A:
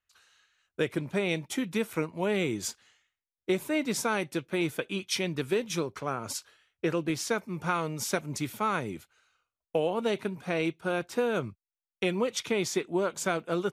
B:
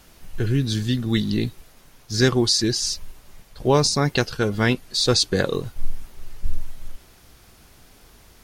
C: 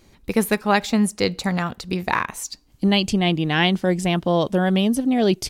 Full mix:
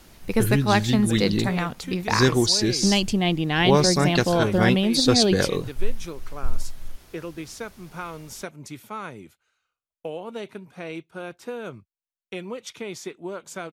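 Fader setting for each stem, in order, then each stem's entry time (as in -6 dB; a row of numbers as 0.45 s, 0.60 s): -5.5 dB, -1.0 dB, -2.5 dB; 0.30 s, 0.00 s, 0.00 s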